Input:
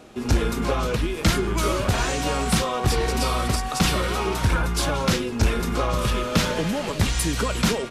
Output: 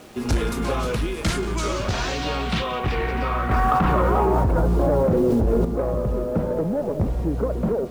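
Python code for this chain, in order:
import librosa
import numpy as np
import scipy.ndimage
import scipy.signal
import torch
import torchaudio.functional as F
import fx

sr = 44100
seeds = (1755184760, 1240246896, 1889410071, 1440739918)

y = fx.filter_sweep_lowpass(x, sr, from_hz=11000.0, to_hz=560.0, start_s=1.13, end_s=4.71, q=1.8)
y = 10.0 ** (-15.0 / 20.0) * np.tanh(y / 10.0 ** (-15.0 / 20.0))
y = fx.echo_feedback(y, sr, ms=181, feedback_pct=52, wet_db=-17)
y = fx.quant_dither(y, sr, seeds[0], bits=8, dither='none')
y = fx.rider(y, sr, range_db=10, speed_s=0.5)
y = fx.high_shelf(y, sr, hz=5300.0, db=-5.5)
y = fx.env_flatten(y, sr, amount_pct=100, at=(3.51, 5.65))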